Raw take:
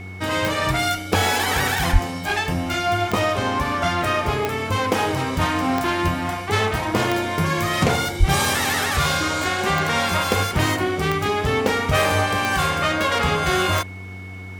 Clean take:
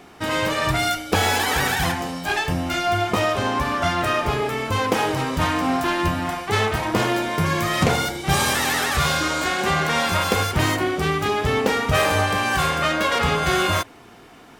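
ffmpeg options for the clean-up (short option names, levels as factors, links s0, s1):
-filter_complex "[0:a]adeclick=t=4,bandreject=f=93.9:t=h:w=4,bandreject=f=187.8:t=h:w=4,bandreject=f=281.7:t=h:w=4,bandreject=f=375.6:t=h:w=4,bandreject=f=469.5:t=h:w=4,bandreject=f=2200:w=30,asplit=3[s0][s1][s2];[s0]afade=t=out:st=1.92:d=0.02[s3];[s1]highpass=f=140:w=0.5412,highpass=f=140:w=1.3066,afade=t=in:st=1.92:d=0.02,afade=t=out:st=2.04:d=0.02[s4];[s2]afade=t=in:st=2.04:d=0.02[s5];[s3][s4][s5]amix=inputs=3:normalize=0,asplit=3[s6][s7][s8];[s6]afade=t=out:st=8.19:d=0.02[s9];[s7]highpass=f=140:w=0.5412,highpass=f=140:w=1.3066,afade=t=in:st=8.19:d=0.02,afade=t=out:st=8.31:d=0.02[s10];[s8]afade=t=in:st=8.31:d=0.02[s11];[s9][s10][s11]amix=inputs=3:normalize=0"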